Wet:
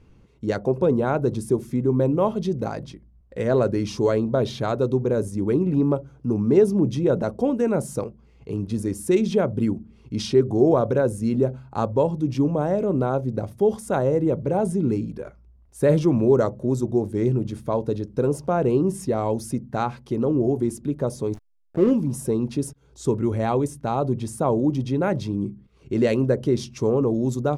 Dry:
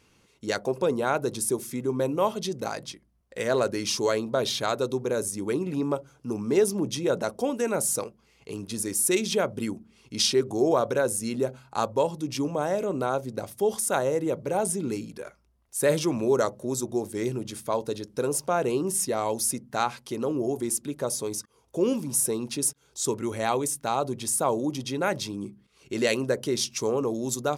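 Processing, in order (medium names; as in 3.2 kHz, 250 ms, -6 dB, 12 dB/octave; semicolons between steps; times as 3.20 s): tilt EQ -4 dB/octave; 21.34–21.91 s: hysteresis with a dead band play -25.5 dBFS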